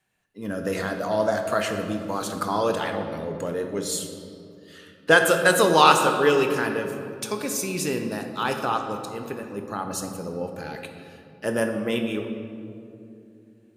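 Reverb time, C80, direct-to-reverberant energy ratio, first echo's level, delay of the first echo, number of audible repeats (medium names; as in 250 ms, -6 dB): 2.7 s, 7.0 dB, 4.5 dB, no echo, no echo, no echo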